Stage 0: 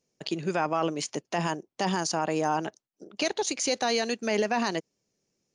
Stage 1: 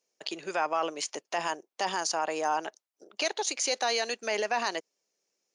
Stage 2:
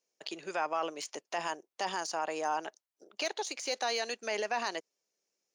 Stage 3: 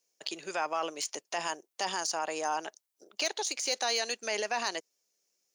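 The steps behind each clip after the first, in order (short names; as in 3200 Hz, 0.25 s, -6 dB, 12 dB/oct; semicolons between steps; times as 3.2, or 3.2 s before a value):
HPF 530 Hz 12 dB/oct
de-esser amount 65%; gain -4 dB
high shelf 4200 Hz +10 dB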